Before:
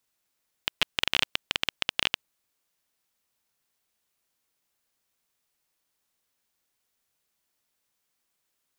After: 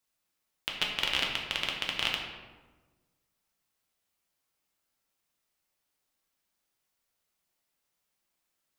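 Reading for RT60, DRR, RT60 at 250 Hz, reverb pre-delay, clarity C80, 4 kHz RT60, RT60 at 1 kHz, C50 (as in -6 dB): 1.3 s, -1.5 dB, 1.5 s, 3 ms, 5.5 dB, 0.75 s, 1.2 s, 3.5 dB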